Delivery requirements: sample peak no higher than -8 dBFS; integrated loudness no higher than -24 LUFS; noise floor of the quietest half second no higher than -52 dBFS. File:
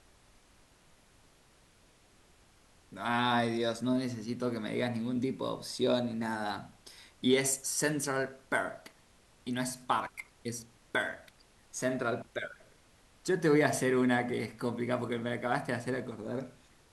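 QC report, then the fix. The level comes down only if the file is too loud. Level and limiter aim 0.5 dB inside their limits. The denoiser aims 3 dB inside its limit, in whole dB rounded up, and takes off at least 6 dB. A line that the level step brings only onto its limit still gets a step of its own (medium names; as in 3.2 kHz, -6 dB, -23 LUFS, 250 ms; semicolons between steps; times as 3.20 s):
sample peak -13.5 dBFS: pass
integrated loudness -32.5 LUFS: pass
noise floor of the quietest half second -63 dBFS: pass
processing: none needed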